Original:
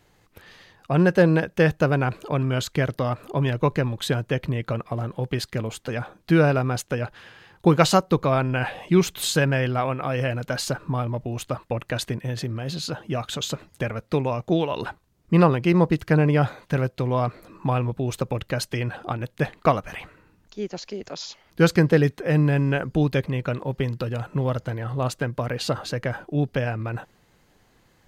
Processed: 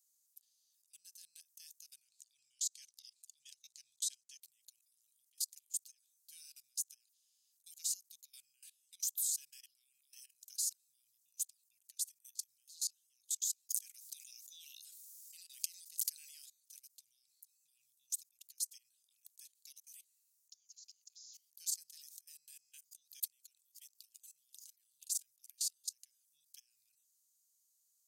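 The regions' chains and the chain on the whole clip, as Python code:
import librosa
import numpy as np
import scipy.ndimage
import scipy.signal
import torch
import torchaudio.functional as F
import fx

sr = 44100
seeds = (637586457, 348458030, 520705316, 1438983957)

y = fx.chain(x, sr, fx.lowpass(hz=5400.0, slope=12),
    fx.high_shelf(hz=4100.0, db=10.0), at=(2.08, 4.42))
y = fx.chain(y, sr, fx.steep_highpass(hz=600.0, slope=36),
    fx.env_flatten(amount_pct=70), at=(13.69, 16.46))
y = fx.chain(y, sr, fx.highpass(hz=120.0, slope=12),
    fx.sustainer(db_per_s=79.0), at=(21.13, 25.3))
y = scipy.signal.sosfilt(scipy.signal.cheby2(4, 80, 1200.0, 'highpass', fs=sr, output='sos'), y)
y = fx.level_steps(y, sr, step_db=21)
y = y * librosa.db_to_amplitude(7.0)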